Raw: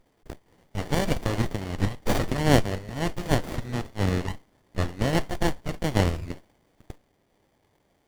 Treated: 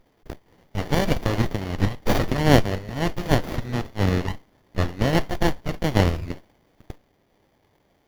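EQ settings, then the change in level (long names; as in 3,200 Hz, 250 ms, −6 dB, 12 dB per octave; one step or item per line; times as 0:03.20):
parametric band 8,400 Hz −10.5 dB 0.4 octaves
+3.5 dB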